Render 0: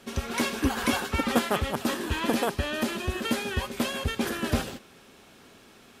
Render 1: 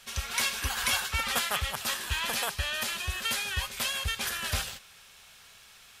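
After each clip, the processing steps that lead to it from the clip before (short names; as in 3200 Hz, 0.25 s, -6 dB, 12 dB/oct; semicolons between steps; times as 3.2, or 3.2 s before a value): passive tone stack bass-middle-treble 10-0-10; gain +5.5 dB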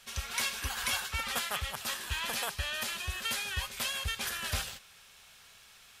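vocal rider 2 s; gain -4 dB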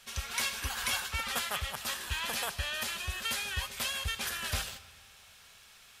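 digital reverb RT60 2 s, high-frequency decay 0.75×, pre-delay 35 ms, DRR 17 dB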